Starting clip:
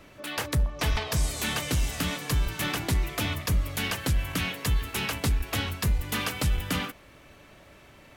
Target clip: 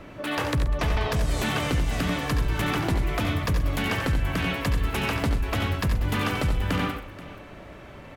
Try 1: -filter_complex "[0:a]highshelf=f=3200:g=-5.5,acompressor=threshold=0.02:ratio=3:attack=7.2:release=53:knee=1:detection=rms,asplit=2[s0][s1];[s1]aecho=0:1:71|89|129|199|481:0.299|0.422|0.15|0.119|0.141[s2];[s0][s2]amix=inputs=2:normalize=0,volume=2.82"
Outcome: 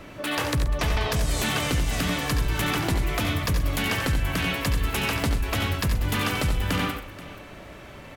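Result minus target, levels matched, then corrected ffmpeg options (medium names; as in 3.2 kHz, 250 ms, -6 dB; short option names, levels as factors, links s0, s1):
8 kHz band +5.5 dB
-filter_complex "[0:a]highshelf=f=3200:g=-14,acompressor=threshold=0.02:ratio=3:attack=7.2:release=53:knee=1:detection=rms,asplit=2[s0][s1];[s1]aecho=0:1:71|89|129|199|481:0.299|0.422|0.15|0.119|0.141[s2];[s0][s2]amix=inputs=2:normalize=0,volume=2.82"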